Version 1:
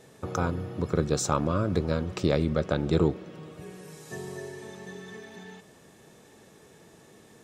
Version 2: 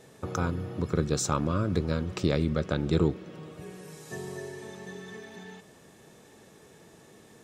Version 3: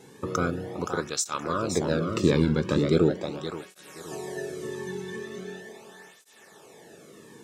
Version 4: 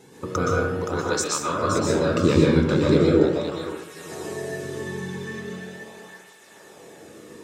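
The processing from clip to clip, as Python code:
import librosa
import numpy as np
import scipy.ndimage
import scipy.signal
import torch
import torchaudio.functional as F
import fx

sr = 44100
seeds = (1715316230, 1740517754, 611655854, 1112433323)

y1 = fx.dynamic_eq(x, sr, hz=680.0, q=1.1, threshold_db=-39.0, ratio=4.0, max_db=-5)
y2 = fx.echo_feedback(y1, sr, ms=522, feedback_pct=31, wet_db=-6.5)
y2 = fx.flanger_cancel(y2, sr, hz=0.4, depth_ms=1.7)
y2 = y2 * 10.0 ** (6.0 / 20.0)
y3 = fx.rev_plate(y2, sr, seeds[0], rt60_s=0.72, hf_ratio=0.55, predelay_ms=110, drr_db=-3.5)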